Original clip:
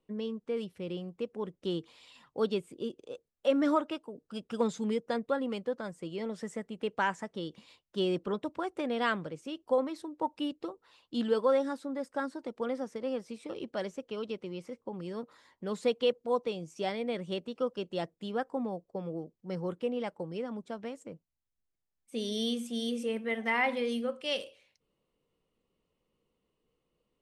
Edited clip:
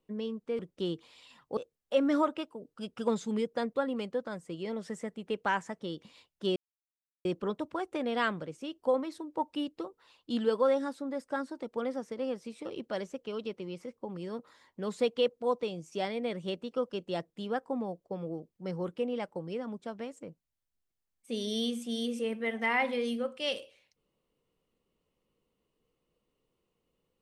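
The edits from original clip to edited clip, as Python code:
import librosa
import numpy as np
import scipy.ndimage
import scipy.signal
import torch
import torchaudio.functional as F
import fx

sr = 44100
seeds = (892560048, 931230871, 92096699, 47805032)

y = fx.edit(x, sr, fx.cut(start_s=0.59, length_s=0.85),
    fx.cut(start_s=2.42, length_s=0.68),
    fx.insert_silence(at_s=8.09, length_s=0.69), tone=tone)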